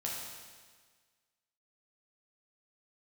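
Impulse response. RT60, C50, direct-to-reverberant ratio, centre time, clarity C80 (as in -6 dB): 1.6 s, 0.0 dB, -4.0 dB, 86 ms, 2.5 dB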